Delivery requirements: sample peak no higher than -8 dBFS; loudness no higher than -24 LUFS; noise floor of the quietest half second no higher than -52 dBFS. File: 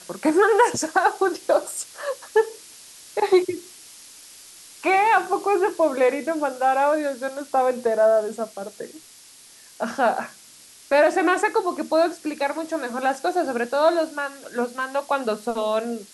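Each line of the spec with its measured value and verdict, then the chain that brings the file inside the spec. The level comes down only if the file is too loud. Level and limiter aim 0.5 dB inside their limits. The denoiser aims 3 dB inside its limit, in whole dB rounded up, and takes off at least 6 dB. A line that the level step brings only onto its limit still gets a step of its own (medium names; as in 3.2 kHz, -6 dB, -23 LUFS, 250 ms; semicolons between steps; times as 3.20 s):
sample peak -6.0 dBFS: fail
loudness -22.0 LUFS: fail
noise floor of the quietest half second -48 dBFS: fail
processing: noise reduction 6 dB, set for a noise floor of -48 dBFS; trim -2.5 dB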